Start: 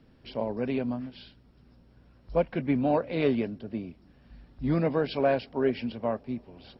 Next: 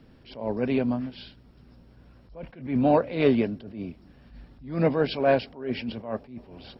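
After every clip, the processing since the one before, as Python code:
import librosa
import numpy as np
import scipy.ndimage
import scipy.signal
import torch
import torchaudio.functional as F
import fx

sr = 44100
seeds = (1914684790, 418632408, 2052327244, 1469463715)

y = fx.attack_slew(x, sr, db_per_s=120.0)
y = F.gain(torch.from_numpy(y), 5.0).numpy()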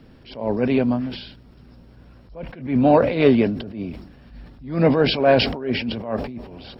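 y = fx.sustainer(x, sr, db_per_s=75.0)
y = F.gain(torch.from_numpy(y), 5.5).numpy()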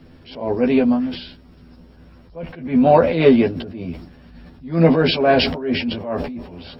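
y = fx.doubler(x, sr, ms=12.0, db=-2)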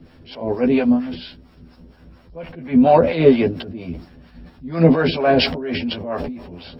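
y = fx.harmonic_tremolo(x, sr, hz=4.3, depth_pct=70, crossover_hz=560.0)
y = F.gain(torch.from_numpy(y), 3.0).numpy()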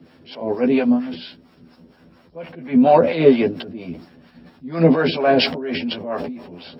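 y = scipy.signal.sosfilt(scipy.signal.butter(2, 160.0, 'highpass', fs=sr, output='sos'), x)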